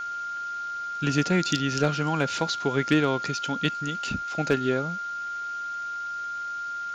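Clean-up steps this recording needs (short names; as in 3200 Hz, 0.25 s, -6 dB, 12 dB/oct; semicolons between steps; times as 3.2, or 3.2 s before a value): clip repair -12.5 dBFS; notch 1400 Hz, Q 30; denoiser 30 dB, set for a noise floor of -33 dBFS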